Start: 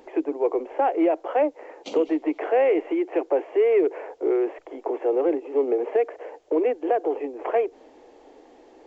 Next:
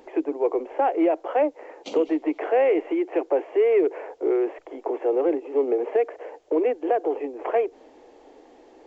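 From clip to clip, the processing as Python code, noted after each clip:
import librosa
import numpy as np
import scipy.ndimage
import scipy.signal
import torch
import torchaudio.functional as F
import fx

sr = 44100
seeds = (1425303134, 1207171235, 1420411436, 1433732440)

y = x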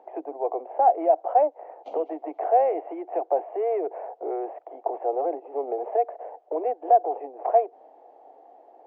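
y = fx.bandpass_q(x, sr, hz=720.0, q=6.0)
y = F.gain(torch.from_numpy(y), 8.5).numpy()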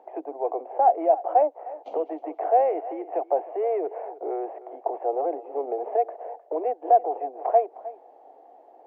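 y = x + 10.0 ** (-17.0 / 20.0) * np.pad(x, (int(309 * sr / 1000.0), 0))[:len(x)]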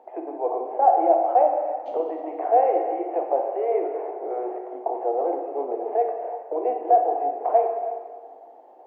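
y = fx.rev_plate(x, sr, seeds[0], rt60_s=1.6, hf_ratio=0.8, predelay_ms=0, drr_db=1.0)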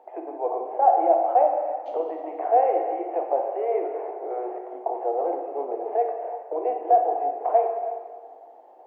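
y = scipy.signal.sosfilt(scipy.signal.bessel(2, 350.0, 'highpass', norm='mag', fs=sr, output='sos'), x)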